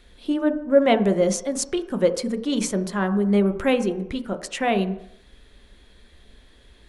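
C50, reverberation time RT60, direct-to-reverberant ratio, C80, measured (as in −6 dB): 13.0 dB, 0.70 s, 7.5 dB, 15.0 dB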